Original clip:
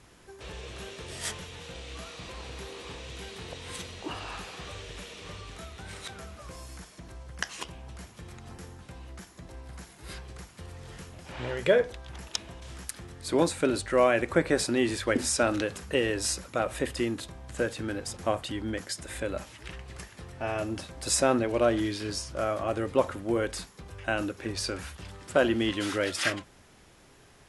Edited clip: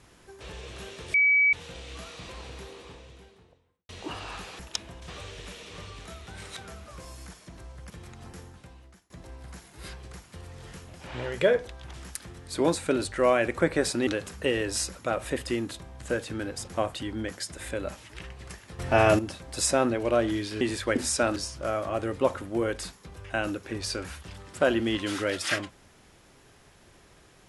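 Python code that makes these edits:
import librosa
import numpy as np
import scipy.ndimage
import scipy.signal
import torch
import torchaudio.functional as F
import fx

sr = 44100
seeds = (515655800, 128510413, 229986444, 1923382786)

y = fx.studio_fade_out(x, sr, start_s=2.25, length_s=1.64)
y = fx.edit(y, sr, fx.bleep(start_s=1.14, length_s=0.39, hz=2280.0, db=-17.5),
    fx.cut(start_s=7.41, length_s=0.74),
    fx.fade_out_to(start_s=8.66, length_s=0.69, floor_db=-23.5),
    fx.move(start_s=12.19, length_s=0.49, to_s=4.59),
    fx.move(start_s=14.81, length_s=0.75, to_s=22.1),
    fx.clip_gain(start_s=20.28, length_s=0.4, db=11.5), tone=tone)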